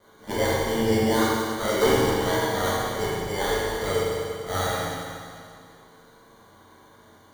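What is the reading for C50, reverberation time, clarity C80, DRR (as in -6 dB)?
-3.5 dB, 2.3 s, -1.0 dB, -9.0 dB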